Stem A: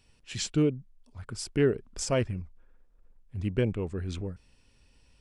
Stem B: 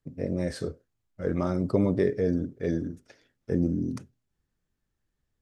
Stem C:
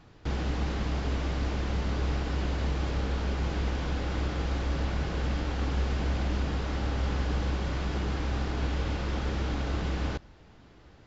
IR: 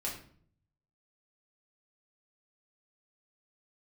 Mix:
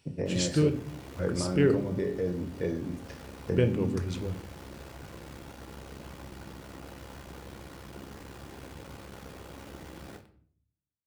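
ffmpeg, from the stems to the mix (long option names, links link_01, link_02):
-filter_complex "[0:a]volume=-1.5dB,asplit=3[link_01][link_02][link_03];[link_01]atrim=end=1.88,asetpts=PTS-STARTPTS,afade=type=out:start_time=1.876:duration=0.004:curve=hsin[link_04];[link_02]atrim=start=1.88:end=3.5,asetpts=PTS-STARTPTS,volume=0[link_05];[link_03]atrim=start=3.5,asetpts=PTS-STARTPTS,afade=type=in:duration=0.004:curve=hsin[link_06];[link_04][link_05][link_06]concat=n=3:v=0:a=1,asplit=2[link_07][link_08];[link_08]volume=-6.5dB[link_09];[1:a]acompressor=threshold=-33dB:ratio=6,volume=1.5dB,asplit=3[link_10][link_11][link_12];[link_11]volume=-4dB[link_13];[2:a]lowpass=frequency=2600:poles=1,bandreject=frequency=60:width_type=h:width=6,bandreject=frequency=120:width_type=h:width=6,bandreject=frequency=180:width_type=h:width=6,bandreject=frequency=240:width_type=h:width=6,acrusher=bits=4:dc=4:mix=0:aa=0.000001,volume=-12dB,asplit=2[link_14][link_15];[link_15]volume=-3.5dB[link_16];[link_12]apad=whole_len=488069[link_17];[link_14][link_17]sidechaincompress=threshold=-42dB:ratio=8:attack=16:release=332[link_18];[3:a]atrim=start_sample=2205[link_19];[link_09][link_13][link_16]amix=inputs=3:normalize=0[link_20];[link_20][link_19]afir=irnorm=-1:irlink=0[link_21];[link_07][link_10][link_18][link_21]amix=inputs=4:normalize=0,highpass=70"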